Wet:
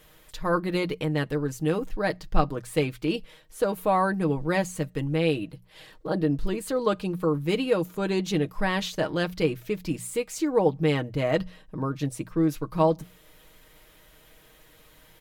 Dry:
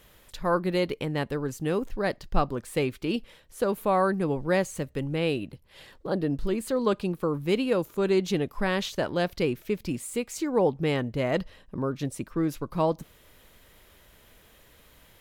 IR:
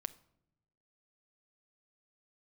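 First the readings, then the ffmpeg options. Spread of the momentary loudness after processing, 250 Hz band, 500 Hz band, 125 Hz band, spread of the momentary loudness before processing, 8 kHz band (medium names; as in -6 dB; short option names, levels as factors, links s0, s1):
8 LU, +1.5 dB, +0.5 dB, +2.5 dB, 7 LU, +1.5 dB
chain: -af "bandreject=f=60:t=h:w=6,bandreject=f=120:t=h:w=6,bandreject=f=180:t=h:w=6,aecho=1:1:6.4:0.58"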